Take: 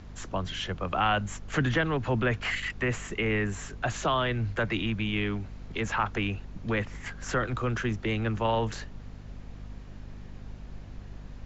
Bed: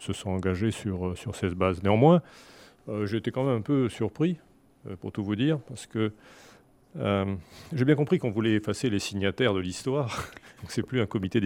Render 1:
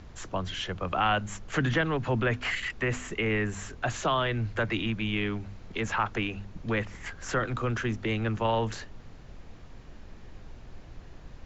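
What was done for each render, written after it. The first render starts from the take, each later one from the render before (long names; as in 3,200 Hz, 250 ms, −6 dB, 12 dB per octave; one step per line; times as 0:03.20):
hum removal 50 Hz, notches 5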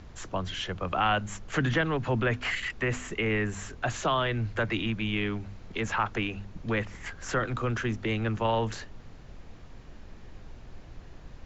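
no processing that can be heard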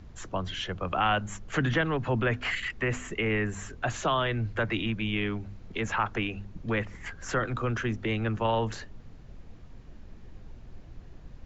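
broadband denoise 6 dB, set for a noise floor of −48 dBFS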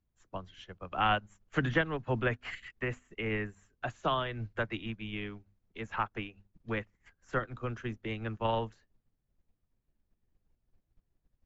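expander for the loud parts 2.5 to 1, over −45 dBFS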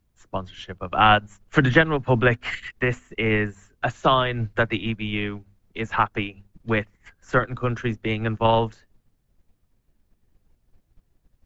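level +12 dB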